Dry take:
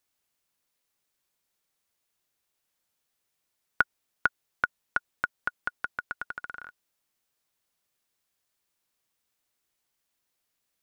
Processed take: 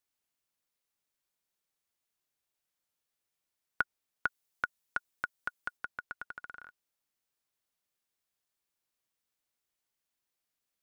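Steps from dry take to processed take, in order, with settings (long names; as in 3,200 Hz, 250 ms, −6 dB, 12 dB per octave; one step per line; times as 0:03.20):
0:04.26–0:05.77: high-shelf EQ 4,200 Hz +6.5 dB
level −7 dB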